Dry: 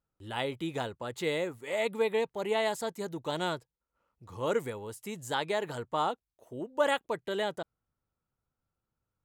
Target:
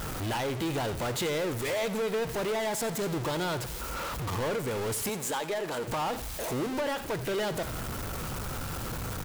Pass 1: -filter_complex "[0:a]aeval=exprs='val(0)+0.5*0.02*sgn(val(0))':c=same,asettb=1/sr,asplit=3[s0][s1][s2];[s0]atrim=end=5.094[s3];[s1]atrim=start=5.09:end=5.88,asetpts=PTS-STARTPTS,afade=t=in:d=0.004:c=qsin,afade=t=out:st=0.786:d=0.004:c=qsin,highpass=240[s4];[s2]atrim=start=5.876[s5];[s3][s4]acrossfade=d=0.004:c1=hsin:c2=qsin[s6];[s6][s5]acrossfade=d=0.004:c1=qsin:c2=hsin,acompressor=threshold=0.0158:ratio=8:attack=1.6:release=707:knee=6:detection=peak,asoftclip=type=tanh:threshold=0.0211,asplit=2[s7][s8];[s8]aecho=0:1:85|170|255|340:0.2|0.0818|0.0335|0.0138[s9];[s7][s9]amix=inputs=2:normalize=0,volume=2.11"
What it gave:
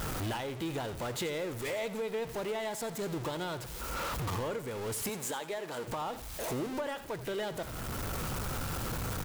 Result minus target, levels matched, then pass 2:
compression: peak gain reduction +9 dB
-filter_complex "[0:a]aeval=exprs='val(0)+0.5*0.02*sgn(val(0))':c=same,asettb=1/sr,asplit=3[s0][s1][s2];[s0]atrim=end=5.094[s3];[s1]atrim=start=5.09:end=5.88,asetpts=PTS-STARTPTS,afade=t=in:d=0.004:c=qsin,afade=t=out:st=0.786:d=0.004:c=qsin,highpass=240[s4];[s2]atrim=start=5.876[s5];[s3][s4]acrossfade=d=0.004:c1=hsin:c2=qsin[s6];[s6][s5]acrossfade=d=0.004:c1=qsin:c2=hsin,acompressor=threshold=0.0531:ratio=8:attack=1.6:release=707:knee=6:detection=peak,asoftclip=type=tanh:threshold=0.0211,asplit=2[s7][s8];[s8]aecho=0:1:85|170|255|340:0.2|0.0818|0.0335|0.0138[s9];[s7][s9]amix=inputs=2:normalize=0,volume=2.11"

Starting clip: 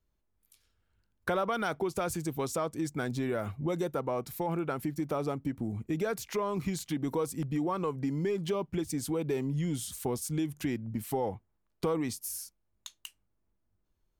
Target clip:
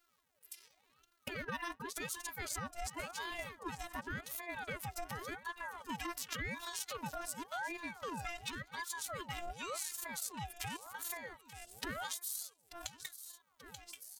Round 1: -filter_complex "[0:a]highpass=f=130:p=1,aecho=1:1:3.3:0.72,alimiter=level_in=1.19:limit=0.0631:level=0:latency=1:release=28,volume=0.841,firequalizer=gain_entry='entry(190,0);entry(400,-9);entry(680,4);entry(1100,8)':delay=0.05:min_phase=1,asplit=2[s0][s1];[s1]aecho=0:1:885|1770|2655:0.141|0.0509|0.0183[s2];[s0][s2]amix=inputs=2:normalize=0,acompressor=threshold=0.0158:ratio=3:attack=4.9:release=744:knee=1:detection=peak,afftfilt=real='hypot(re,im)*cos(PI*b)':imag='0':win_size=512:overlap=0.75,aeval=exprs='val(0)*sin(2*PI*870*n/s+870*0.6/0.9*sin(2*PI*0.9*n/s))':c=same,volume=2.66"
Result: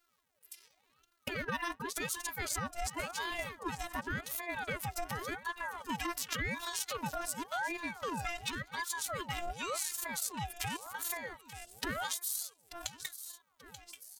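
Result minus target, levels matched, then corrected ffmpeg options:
compression: peak gain reduction -4.5 dB
-filter_complex "[0:a]highpass=f=130:p=1,aecho=1:1:3.3:0.72,alimiter=level_in=1.19:limit=0.0631:level=0:latency=1:release=28,volume=0.841,firequalizer=gain_entry='entry(190,0);entry(400,-9);entry(680,4);entry(1100,8)':delay=0.05:min_phase=1,asplit=2[s0][s1];[s1]aecho=0:1:885|1770|2655:0.141|0.0509|0.0183[s2];[s0][s2]amix=inputs=2:normalize=0,acompressor=threshold=0.00708:ratio=3:attack=4.9:release=744:knee=1:detection=peak,afftfilt=real='hypot(re,im)*cos(PI*b)':imag='0':win_size=512:overlap=0.75,aeval=exprs='val(0)*sin(2*PI*870*n/s+870*0.6/0.9*sin(2*PI*0.9*n/s))':c=same,volume=2.66"

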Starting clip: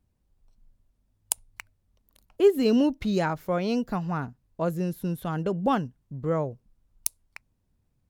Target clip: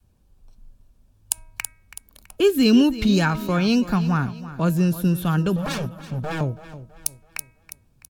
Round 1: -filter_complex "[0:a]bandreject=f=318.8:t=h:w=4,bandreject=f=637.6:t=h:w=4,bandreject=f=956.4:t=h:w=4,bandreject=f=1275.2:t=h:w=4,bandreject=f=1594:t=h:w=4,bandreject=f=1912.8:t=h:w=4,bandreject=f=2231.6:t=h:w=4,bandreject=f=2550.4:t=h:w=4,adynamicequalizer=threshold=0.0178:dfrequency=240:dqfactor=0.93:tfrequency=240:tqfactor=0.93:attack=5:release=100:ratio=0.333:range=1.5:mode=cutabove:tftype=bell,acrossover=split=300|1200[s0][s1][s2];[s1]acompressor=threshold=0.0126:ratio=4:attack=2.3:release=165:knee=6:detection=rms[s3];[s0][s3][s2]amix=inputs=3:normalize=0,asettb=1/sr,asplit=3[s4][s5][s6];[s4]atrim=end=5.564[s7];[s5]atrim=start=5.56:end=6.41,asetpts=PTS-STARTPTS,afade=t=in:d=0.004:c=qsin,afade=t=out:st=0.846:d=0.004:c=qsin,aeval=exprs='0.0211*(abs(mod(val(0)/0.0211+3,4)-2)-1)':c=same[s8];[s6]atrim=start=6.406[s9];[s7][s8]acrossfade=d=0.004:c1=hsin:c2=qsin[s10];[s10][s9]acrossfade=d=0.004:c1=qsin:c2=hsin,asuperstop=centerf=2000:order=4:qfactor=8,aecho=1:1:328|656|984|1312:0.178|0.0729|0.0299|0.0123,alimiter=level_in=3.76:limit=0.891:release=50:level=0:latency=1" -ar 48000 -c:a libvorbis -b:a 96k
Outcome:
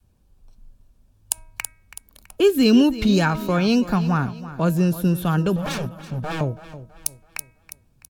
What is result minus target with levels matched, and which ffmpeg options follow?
compression: peak gain reduction -5.5 dB
-filter_complex "[0:a]bandreject=f=318.8:t=h:w=4,bandreject=f=637.6:t=h:w=4,bandreject=f=956.4:t=h:w=4,bandreject=f=1275.2:t=h:w=4,bandreject=f=1594:t=h:w=4,bandreject=f=1912.8:t=h:w=4,bandreject=f=2231.6:t=h:w=4,bandreject=f=2550.4:t=h:w=4,adynamicequalizer=threshold=0.0178:dfrequency=240:dqfactor=0.93:tfrequency=240:tqfactor=0.93:attack=5:release=100:ratio=0.333:range=1.5:mode=cutabove:tftype=bell,acrossover=split=300|1200[s0][s1][s2];[s1]acompressor=threshold=0.00562:ratio=4:attack=2.3:release=165:knee=6:detection=rms[s3];[s0][s3][s2]amix=inputs=3:normalize=0,asettb=1/sr,asplit=3[s4][s5][s6];[s4]atrim=end=5.564[s7];[s5]atrim=start=5.56:end=6.41,asetpts=PTS-STARTPTS,afade=t=in:d=0.004:c=qsin,afade=t=out:st=0.846:d=0.004:c=qsin,aeval=exprs='0.0211*(abs(mod(val(0)/0.0211+3,4)-2)-1)':c=same[s8];[s6]atrim=start=6.406[s9];[s7][s8]acrossfade=d=0.004:c1=hsin:c2=qsin[s10];[s10][s9]acrossfade=d=0.004:c1=qsin:c2=hsin,asuperstop=centerf=2000:order=4:qfactor=8,aecho=1:1:328|656|984|1312:0.178|0.0729|0.0299|0.0123,alimiter=level_in=3.76:limit=0.891:release=50:level=0:latency=1" -ar 48000 -c:a libvorbis -b:a 96k

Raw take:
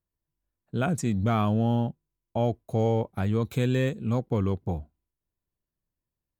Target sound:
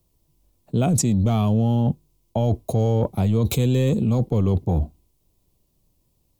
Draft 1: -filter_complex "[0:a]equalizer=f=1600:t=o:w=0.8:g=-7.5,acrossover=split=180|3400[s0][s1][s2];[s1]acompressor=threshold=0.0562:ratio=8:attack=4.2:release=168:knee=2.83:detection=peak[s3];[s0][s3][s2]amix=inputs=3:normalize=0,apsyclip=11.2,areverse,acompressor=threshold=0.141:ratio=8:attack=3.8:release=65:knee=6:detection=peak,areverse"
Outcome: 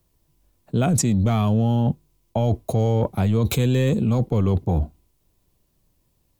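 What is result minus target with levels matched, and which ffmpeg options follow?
2 kHz band +4.5 dB
-filter_complex "[0:a]equalizer=f=1600:t=o:w=0.8:g=-17.5,acrossover=split=180|3400[s0][s1][s2];[s1]acompressor=threshold=0.0562:ratio=8:attack=4.2:release=168:knee=2.83:detection=peak[s3];[s0][s3][s2]amix=inputs=3:normalize=0,apsyclip=11.2,areverse,acompressor=threshold=0.141:ratio=8:attack=3.8:release=65:knee=6:detection=peak,areverse"

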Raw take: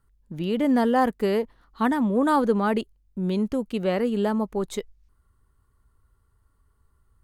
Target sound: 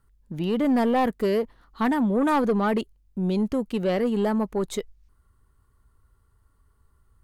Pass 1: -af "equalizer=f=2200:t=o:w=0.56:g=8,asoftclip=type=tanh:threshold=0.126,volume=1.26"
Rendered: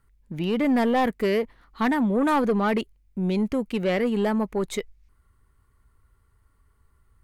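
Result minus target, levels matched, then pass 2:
2 kHz band +3.0 dB
-af "asoftclip=type=tanh:threshold=0.126,volume=1.26"

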